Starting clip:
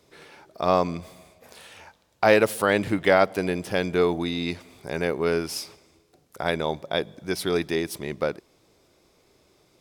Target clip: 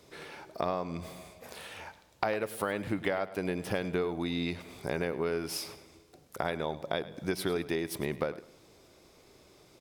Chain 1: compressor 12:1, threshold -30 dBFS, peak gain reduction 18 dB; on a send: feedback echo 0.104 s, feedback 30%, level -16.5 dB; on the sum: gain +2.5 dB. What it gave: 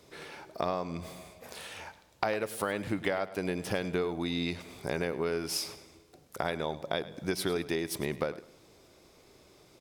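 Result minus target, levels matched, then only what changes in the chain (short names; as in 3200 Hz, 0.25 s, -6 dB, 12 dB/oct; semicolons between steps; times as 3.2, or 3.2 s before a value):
8000 Hz band +3.0 dB
add after compressor: dynamic EQ 6500 Hz, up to -5 dB, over -56 dBFS, Q 0.81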